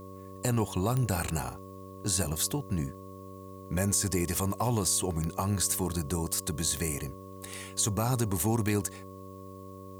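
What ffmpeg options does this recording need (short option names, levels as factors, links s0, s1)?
-af "adeclick=t=4,bandreject=f=95.3:t=h:w=4,bandreject=f=190.6:t=h:w=4,bandreject=f=285.9:t=h:w=4,bandreject=f=381.2:t=h:w=4,bandreject=f=476.5:t=h:w=4,bandreject=f=571.8:t=h:w=4,bandreject=f=1100:w=30,agate=range=0.0891:threshold=0.0141"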